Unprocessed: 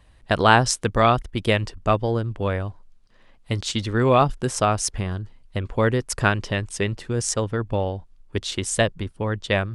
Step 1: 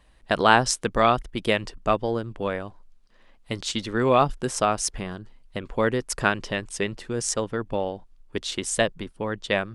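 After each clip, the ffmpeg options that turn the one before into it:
-af "equalizer=f=92:w=1.9:g=-14,volume=0.841"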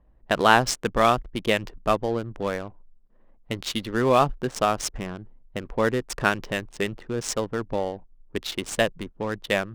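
-af "adynamicsmooth=sensitivity=8:basefreq=720"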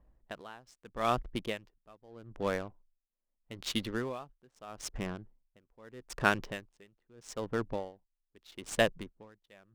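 -af "aeval=exprs='val(0)*pow(10,-31*(0.5-0.5*cos(2*PI*0.79*n/s))/20)':c=same,volume=0.631"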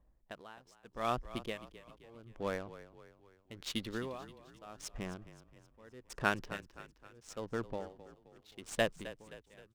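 -filter_complex "[0:a]asplit=6[s0][s1][s2][s3][s4][s5];[s1]adelay=262,afreqshift=-31,volume=0.178[s6];[s2]adelay=524,afreqshift=-62,volume=0.0871[s7];[s3]adelay=786,afreqshift=-93,volume=0.0427[s8];[s4]adelay=1048,afreqshift=-124,volume=0.0209[s9];[s5]adelay=1310,afreqshift=-155,volume=0.0102[s10];[s0][s6][s7][s8][s9][s10]amix=inputs=6:normalize=0,volume=0.596"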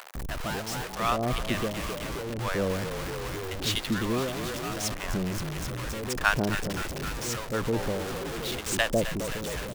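-filter_complex "[0:a]aeval=exprs='val(0)+0.5*0.0168*sgn(val(0))':c=same,acrossover=split=680[s0][s1];[s0]adelay=150[s2];[s2][s1]amix=inputs=2:normalize=0,volume=2.51"

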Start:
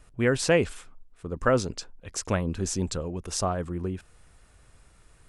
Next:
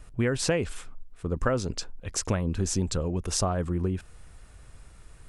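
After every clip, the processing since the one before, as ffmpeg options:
-af "lowshelf=f=140:g=5.5,acompressor=threshold=0.0562:ratio=6,volume=1.41"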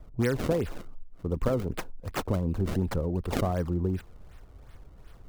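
-filter_complex "[0:a]acrossover=split=320|1200[s0][s1][s2];[s2]acrusher=samples=30:mix=1:aa=0.000001:lfo=1:lforange=48:lforate=2.7[s3];[s0][s1][s3]amix=inputs=3:normalize=0,asoftclip=type=tanh:threshold=0.237"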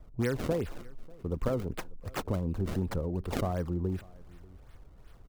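-af "aecho=1:1:592:0.0631,volume=0.668"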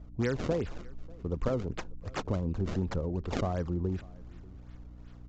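-af "aeval=exprs='val(0)+0.00398*(sin(2*PI*60*n/s)+sin(2*PI*2*60*n/s)/2+sin(2*PI*3*60*n/s)/3+sin(2*PI*4*60*n/s)/4+sin(2*PI*5*60*n/s)/5)':c=same,aresample=16000,aresample=44100"

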